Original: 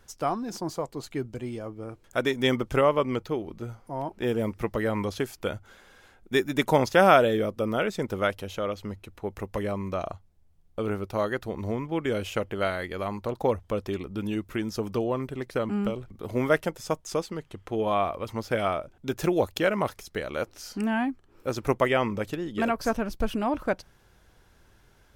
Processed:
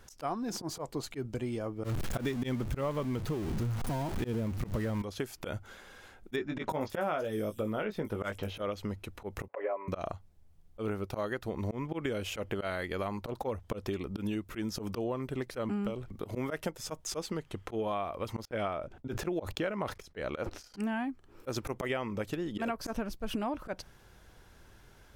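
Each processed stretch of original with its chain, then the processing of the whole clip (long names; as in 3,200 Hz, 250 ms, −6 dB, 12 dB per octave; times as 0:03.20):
0:01.84–0:05.02: converter with a step at zero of −29.5 dBFS + bass and treble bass +10 dB, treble 0 dB
0:06.36–0:08.62: parametric band 5,300 Hz −4.5 dB 1.9 octaves + double-tracking delay 19 ms −7 dB + multiband delay without the direct sound lows, highs 330 ms, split 5,500 Hz
0:09.48–0:09.88: Chebyshev band-pass filter 530–2,400 Hz, order 3 + spectral tilt −4.5 dB per octave + comb filter 7.1 ms, depth 94%
0:18.45–0:20.74: low-pass filter 3,300 Hz 6 dB per octave + noise gate −45 dBFS, range −31 dB + level that may fall only so fast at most 140 dB per second
whole clip: volume swells 111 ms; downward compressor 6 to 1, threshold −33 dBFS; level +2 dB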